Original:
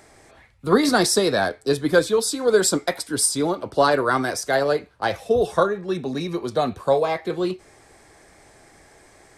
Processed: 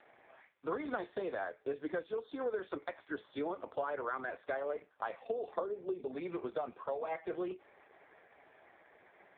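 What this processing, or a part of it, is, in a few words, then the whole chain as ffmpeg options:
voicemail: -filter_complex "[0:a]asettb=1/sr,asplit=3[link_01][link_02][link_03];[link_01]atrim=end=5.554[link_04];[link_02]atrim=start=5.55:end=6.07,asetpts=PTS-STARTPTS,afade=type=in:duration=0.004:curve=qsin,afade=type=out:start_time=0.516:duration=0.004:curve=qsin,equalizer=frequency=100:width_type=o:width=0.67:gain=-5,equalizer=frequency=400:width_type=o:width=0.67:gain=7,equalizer=frequency=1600:width_type=o:width=0.67:gain=-11[link_05];[link_03]atrim=start=6.066[link_06];[link_04][link_05]acrossfade=duration=0.004:curve1=hsin:curve2=qsin[link_07];[link_07][link_06]acrossfade=duration=0.004:curve1=qsin:curve2=hsin,highpass=410,lowpass=3000,acompressor=threshold=-29dB:ratio=8,volume=-4dB" -ar 8000 -c:a libopencore_amrnb -b:a 4750

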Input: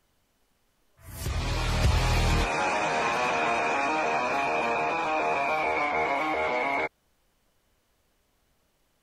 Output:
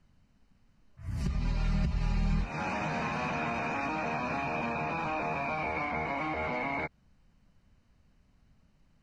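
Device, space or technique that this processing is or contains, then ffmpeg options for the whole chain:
jukebox: -filter_complex "[0:a]lowpass=5100,lowshelf=frequency=280:width_type=q:width=1.5:gain=10.5,bandreject=frequency=3400:width=5.7,acompressor=threshold=-27dB:ratio=5,asettb=1/sr,asplit=3[link_01][link_02][link_03];[link_01]atrim=end=1.204[link_04];[link_02]atrim=start=1.2:end=2.41,asetpts=PTS-STARTPTS,afade=type=in:duration=0.004:curve=qsin,afade=type=out:start_time=1.206:duration=0.004:curve=qsin,aecho=1:1:5:0.96,atrim=end_sample=53361[link_05];[link_03]atrim=start=2.406[link_06];[link_04][link_05]acrossfade=duration=0.004:curve1=hsin:curve2=qsin[link_07];[link_07][link_06]acrossfade=duration=0.004:curve1=qsin:curve2=hsin,volume=-2.5dB"

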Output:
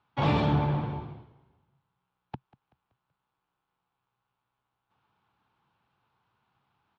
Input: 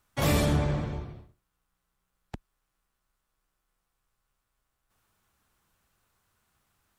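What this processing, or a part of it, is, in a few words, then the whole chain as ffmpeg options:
frequency-shifting delay pedal into a guitar cabinet: -filter_complex "[0:a]asplit=5[link_01][link_02][link_03][link_04][link_05];[link_02]adelay=190,afreqshift=-53,volume=-21.5dB[link_06];[link_03]adelay=380,afreqshift=-106,volume=-27.3dB[link_07];[link_04]adelay=570,afreqshift=-159,volume=-33.2dB[link_08];[link_05]adelay=760,afreqshift=-212,volume=-39dB[link_09];[link_01][link_06][link_07][link_08][link_09]amix=inputs=5:normalize=0,highpass=110,equalizer=frequency=130:width_type=q:width=4:gain=6,equalizer=frequency=590:width_type=q:width=4:gain=-4,equalizer=frequency=880:width_type=q:width=4:gain=9,equalizer=frequency=1900:width_type=q:width=4:gain=-6,lowpass=frequency=3600:width=0.5412,lowpass=frequency=3600:width=1.3066"

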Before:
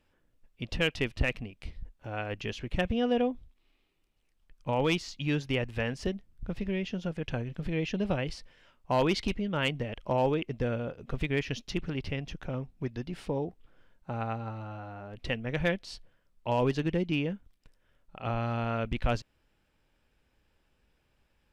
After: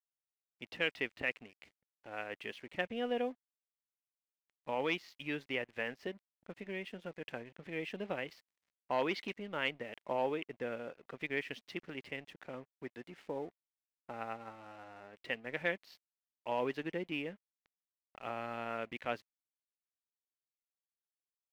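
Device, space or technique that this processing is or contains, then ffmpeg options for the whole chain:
pocket radio on a weak battery: -af "highpass=300,lowpass=3800,aeval=exprs='sgn(val(0))*max(abs(val(0))-0.00178,0)':channel_layout=same,equalizer=frequency=2000:width_type=o:width=0.51:gain=6,volume=-6dB"

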